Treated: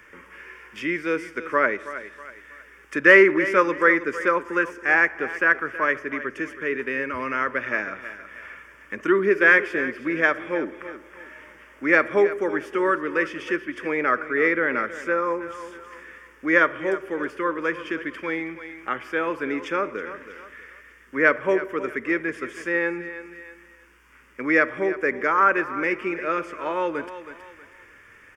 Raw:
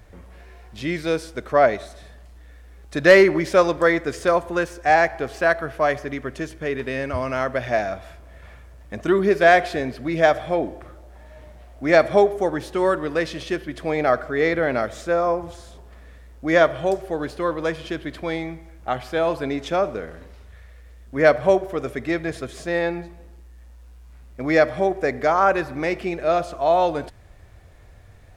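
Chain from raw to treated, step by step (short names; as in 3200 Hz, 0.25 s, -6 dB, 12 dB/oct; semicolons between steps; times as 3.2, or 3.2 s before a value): three-band isolator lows -24 dB, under 260 Hz, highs -15 dB, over 4800 Hz; fixed phaser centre 1700 Hz, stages 4; on a send: feedback echo 0.321 s, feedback 27%, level -14.5 dB; on the sum: mismatched tape noise reduction encoder only; gain +4.5 dB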